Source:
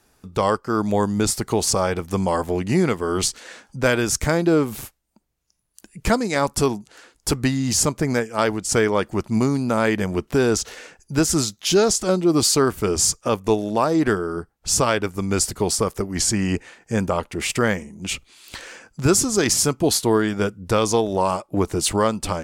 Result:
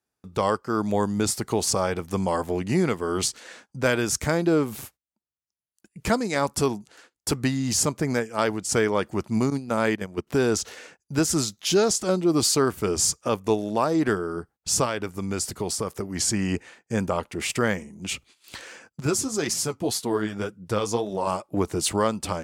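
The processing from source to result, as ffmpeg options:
-filter_complex "[0:a]asettb=1/sr,asplit=3[a][b][c];[a]atrim=end=9.504[d];[b]atrim=start=9.5:end=10.27,asetpts=PTS-STARTPTS,afade=t=in:d=0.004:c=qsin,afade=t=out:st=0.766:d=0.004:c=qsin,agate=range=-13dB:threshold=-22dB:ratio=16:release=100:detection=peak[e];[c]atrim=start=10.266[f];[d][e]acrossfade=d=0.004:c1=hsin:c2=qsin[g];[g][f]acrossfade=d=0.004:c1=qsin:c2=hsin,asettb=1/sr,asplit=3[h][i][j];[h]atrim=end=14.854[k];[i]atrim=start=14.85:end=16.21,asetpts=PTS-STARTPTS,afade=t=in:d=0.004:c=qsin,afade=t=out:st=1.356:d=0.004:c=qsin,acompressor=threshold=-22dB:ratio=2:attack=3.2:release=140:knee=1:detection=peak[l];[j]atrim=start=16.206[m];[k][l]acrossfade=d=0.004:c1=hsin:c2=qsin[n];[n][m]acrossfade=d=0.004:c1=qsin:c2=hsin,asettb=1/sr,asplit=3[o][p][q];[o]atrim=end=19.004[r];[p]atrim=start=19:end=21.27,asetpts=PTS-STARTPTS,afade=t=in:d=0.004:c=qsin,afade=t=out:st=2.266:d=0.004:c=qsin,flanger=delay=4.1:depth=7.4:regen=32:speed=1.9:shape=triangular[s];[q]atrim=start=21.266[t];[r][s]acrossfade=d=0.004:c1=hsin:c2=qsin[u];[u][t]acrossfade=d=0.004:c1=qsin:c2=hsin,highpass=73,agate=range=-20dB:threshold=-46dB:ratio=16:detection=peak,volume=-3.5dB"

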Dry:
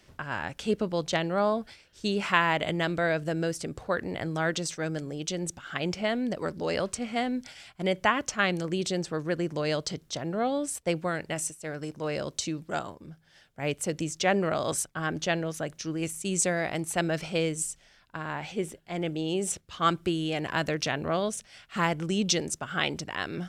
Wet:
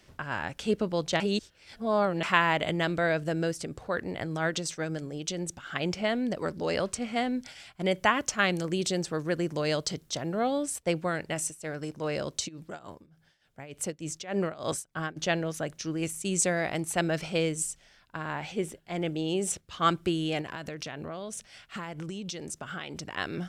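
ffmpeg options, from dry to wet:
-filter_complex "[0:a]asettb=1/sr,asplit=3[a][b][c];[a]atrim=end=3.504[d];[b]atrim=start=3.5:end=5.57,asetpts=PTS-STARTPTS,afade=t=in:d=0.004:c=qsin,afade=t=out:st=2.066:d=0.004:c=qsin,tremolo=f=8.4:d=0.31[e];[c]atrim=start=5.566[f];[d][e]acrossfade=d=0.004:c1=hsin:c2=qsin[g];[g][f]acrossfade=d=0.004:c1=qsin:c2=hsin,asettb=1/sr,asplit=3[h][i][j];[h]atrim=end=7.914[k];[i]atrim=start=7.91:end=10.63,asetpts=PTS-STARTPTS,afade=t=in:d=0.004:c=qsin,afade=t=out:st=2.716:d=0.004:c=qsin,highshelf=f=7.7k:g=6.5[l];[j]atrim=start=10.626[m];[k][l]acrossfade=d=0.004:c1=hsin:c2=qsin[n];[n][m]acrossfade=d=0.004:c1=qsin:c2=hsin,asplit=3[o][p][q];[o]afade=t=out:st=12.47:d=0.02[r];[p]tremolo=f=3.4:d=0.9,afade=t=in:st=12.47:d=0.02,afade=t=out:st=15.16:d=0.02[s];[q]afade=t=in:st=15.16:d=0.02[t];[r][s][t]amix=inputs=3:normalize=0,asettb=1/sr,asplit=3[u][v][w];[u]atrim=end=20.414[x];[v]atrim=start=20.41:end=23.17,asetpts=PTS-STARTPTS,afade=t=in:d=0.004:c=qsin,afade=t=out:st=2.756:d=0.004:c=qsin,acompressor=threshold=-33dB:ratio=12:attack=3.2:release=140:knee=1:detection=peak[y];[w]atrim=start=23.166[z];[x][y]acrossfade=d=0.004:c1=hsin:c2=qsin[aa];[aa][z]acrossfade=d=0.004:c1=qsin:c2=hsin,asplit=3[ab][ac][ad];[ab]atrim=end=1.202[ae];[ac]atrim=start=1.198:end=2.232,asetpts=PTS-STARTPTS,areverse[af];[ad]atrim=start=2.228[ag];[ae][af]acrossfade=d=0.004:c1=hsin:c2=hsin[ah];[ah][ag]acrossfade=d=0.004:c1=hsin:c2=hsin"

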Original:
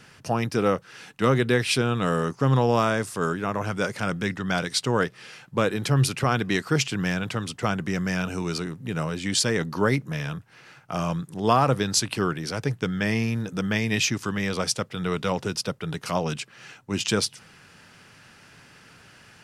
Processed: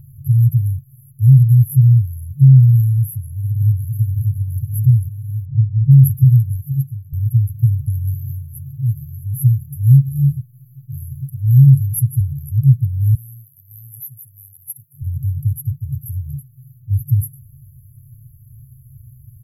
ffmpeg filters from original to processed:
-filter_complex "[0:a]asplit=2[a][b];[b]afade=t=in:st=3.17:d=0.01,afade=t=out:st=3.82:d=0.01,aecho=0:1:560|1120|1680|2240|2800|3360|3920|4480|5040|5600|6160|6720:0.707946|0.495562|0.346893|0.242825|0.169978|0.118984|0.0832891|0.0583024|0.0408117|0.0285682|0.0199977|0.0139984[c];[a][c]amix=inputs=2:normalize=0,asettb=1/sr,asplit=3[d][e][f];[d]atrim=end=5.454[g];[e]atrim=start=5.45:end=5.91,asetpts=PTS-STARTPTS,afade=t=in:d=0.004:c=qsin,afade=t=out:st=0.456:d=0.004:c=qsin,lowpass=1.1k[h];[f]atrim=start=5.906[i];[g][h]acrossfade=d=0.004:c1=hsin:c2=qsin[j];[j][i]acrossfade=d=0.004:c1=qsin:c2=hsin,asettb=1/sr,asplit=3[k][l][m];[k]atrim=end=8.144[n];[l]atrim=start=8.14:end=12.21,asetpts=PTS-STARTPTS,afade=t=in:d=0.004:c=qsin,afade=t=out:st=4.066:d=0.004:c=qsin,aecho=1:1:6.1:0.65,atrim=end_sample=179487[o];[m]atrim=start=12.206[p];[n][o]acrossfade=d=0.004:c1=hsin:c2=qsin[q];[q][p]acrossfade=d=0.004:c1=qsin:c2=hsin,asettb=1/sr,asplit=3[r][s][t];[r]atrim=end=13.154[u];[s]atrim=start=13.15:end=15.02,asetpts=PTS-STARTPTS,afade=t=in:d=0.004:c=qsin,afade=t=out:st=1.866:d=0.004:c=qsin,highpass=600[v];[t]atrim=start=15.016[w];[u][v]acrossfade=d=0.004:c1=hsin:c2=qsin[x];[x][w]acrossfade=d=0.004:c1=qsin:c2=hsin,asplit=2[y][z];[y]atrim=end=7.13,asetpts=PTS-STARTPTS,afade=t=out:st=6.51:d=0.62[aa];[z]atrim=start=7.13,asetpts=PTS-STARTPTS,afade=t=in:d=0.004:c=hsin[ab];[aa][ab]concat=n=2:v=0:a=1,afftfilt=real='re*(1-between(b*sr/4096,140,11000))':imag='im*(1-between(b*sr/4096,140,11000))':win_size=4096:overlap=0.75,alimiter=level_in=20.5dB:limit=-1dB:release=50:level=0:latency=1,volume=-1dB"

